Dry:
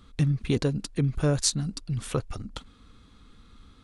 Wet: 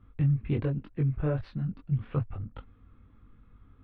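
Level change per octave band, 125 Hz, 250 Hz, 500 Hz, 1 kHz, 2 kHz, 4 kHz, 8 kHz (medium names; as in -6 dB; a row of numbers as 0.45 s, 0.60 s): -1.0 dB, -3.5 dB, -5.5 dB, -5.5 dB, -7.5 dB, under -20 dB, under -40 dB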